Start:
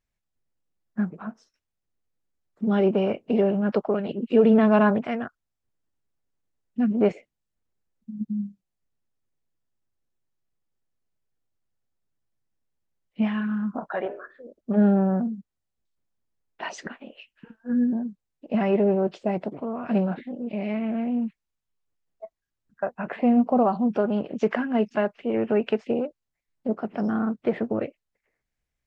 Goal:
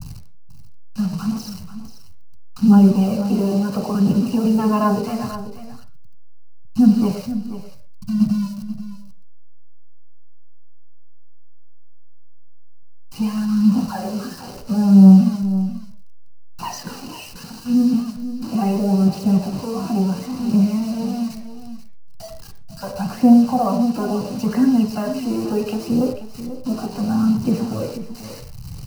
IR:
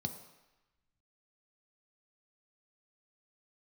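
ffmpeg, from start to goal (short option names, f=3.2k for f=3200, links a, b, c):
-filter_complex "[0:a]aeval=exprs='val(0)+0.5*0.02*sgn(val(0))':c=same,acrossover=split=310[a][b];[a]acompressor=threshold=-23dB:ratio=2.5[c];[c][b]amix=inputs=2:normalize=0,aphaser=in_gain=1:out_gain=1:delay=3.1:decay=0.58:speed=0.73:type=triangular,acrossover=split=210[d][e];[e]acrusher=bits=5:mix=0:aa=0.000001[f];[d][f]amix=inputs=2:normalize=0,aecho=1:1:486:0.237,asplit=2[g][h];[1:a]atrim=start_sample=2205,atrim=end_sample=6174,lowpass=5.3k[i];[h][i]afir=irnorm=-1:irlink=0,volume=2.5dB[j];[g][j]amix=inputs=2:normalize=0,volume=-4dB"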